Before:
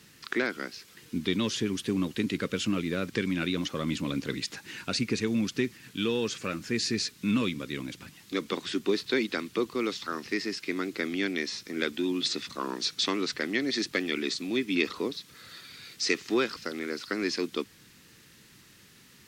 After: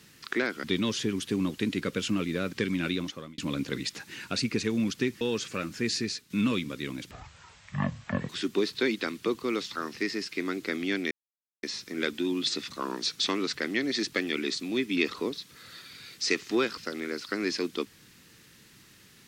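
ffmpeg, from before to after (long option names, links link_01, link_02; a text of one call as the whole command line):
ffmpeg -i in.wav -filter_complex "[0:a]asplit=8[link_01][link_02][link_03][link_04][link_05][link_06][link_07][link_08];[link_01]atrim=end=0.642[link_09];[link_02]atrim=start=1.208:end=3.95,asetpts=PTS-STARTPTS,afade=type=out:start_time=2.272:duration=0.47[link_10];[link_03]atrim=start=3.95:end=5.782,asetpts=PTS-STARTPTS,afade=type=in:duration=0.004:curve=hsin[link_11];[link_04]atrim=start=6.108:end=7.2,asetpts=PTS-STARTPTS,afade=type=out:start_time=0.712:duration=0.38:silence=0.354813[link_12];[link_05]atrim=start=7.2:end=8.014,asetpts=PTS-STARTPTS,afade=type=in:duration=0.004:curve=hsin:silence=0.354813[link_13];[link_06]atrim=start=8.01:end=8.6,asetpts=PTS-STARTPTS,asetrate=22050,aresample=44100[link_14];[link_07]atrim=start=8.596:end=11.42,asetpts=PTS-STARTPTS,afade=type=out:start_time=2.82:duration=0.004:curve=hsin,apad=pad_dur=0.52[link_15];[link_08]atrim=start=11.42,asetpts=PTS-STARTPTS,afade=type=in:duration=0.004:curve=hsin[link_16];[link_10][link_11]concat=n=2:v=0:a=1[link_17];[link_09][link_17]acrossfade=duration=0.004:curve1=hsin:curve2=hsin[link_18];[link_12][link_13]concat=n=2:v=0:a=1[link_19];[link_18][link_19]acrossfade=duration=0.004:curve1=hsin:curve2=hsin[link_20];[link_20][link_14]acrossfade=duration=0.004:curve1=hsin:curve2=hsin[link_21];[link_15][link_16]concat=n=2:v=0:a=1[link_22];[link_21][link_22]acrossfade=duration=0.004:curve1=hsin:curve2=hsin" out.wav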